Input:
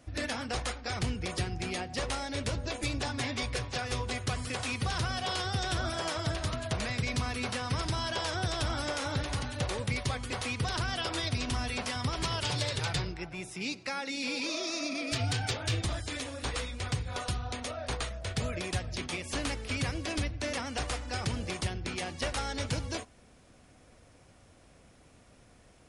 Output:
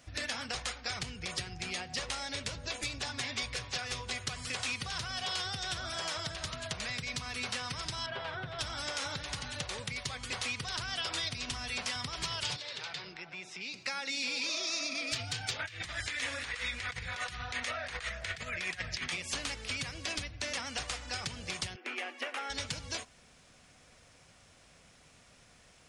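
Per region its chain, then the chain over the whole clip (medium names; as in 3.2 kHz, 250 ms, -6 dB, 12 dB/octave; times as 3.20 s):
8.06–8.59 s: distance through air 490 m + hum notches 50/100/150/200/250/300/350 Hz + comb 7.5 ms, depth 69%
12.56–13.74 s: three-band isolator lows -23 dB, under 180 Hz, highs -21 dB, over 6 kHz + compression 3:1, threshold -42 dBFS
15.59–19.12 s: peaking EQ 1.9 kHz +11.5 dB 0.98 oct + compressor with a negative ratio -35 dBFS, ratio -0.5
21.76–22.50 s: brick-wall FIR high-pass 230 Hz + high-order bell 6 kHz -15 dB + band-stop 940 Hz, Q 17
whole clip: graphic EQ with 31 bands 160 Hz +5 dB, 315 Hz -4 dB, 10 kHz -8 dB; compression, threshold -34 dBFS; tilt shelf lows -6 dB, about 1.1 kHz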